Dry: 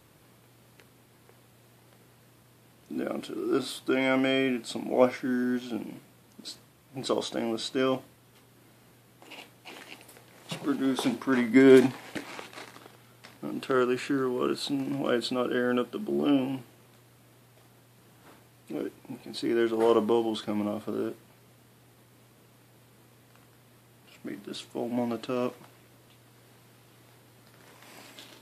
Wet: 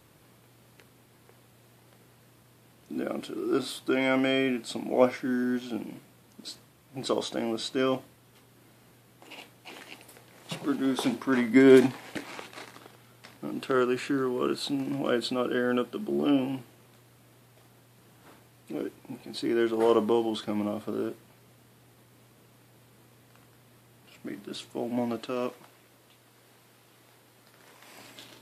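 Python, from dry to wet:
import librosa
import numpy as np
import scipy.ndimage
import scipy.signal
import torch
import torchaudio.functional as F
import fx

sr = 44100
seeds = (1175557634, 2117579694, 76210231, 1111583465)

y = fx.low_shelf(x, sr, hz=200.0, db=-8.0, at=(25.19, 27.99))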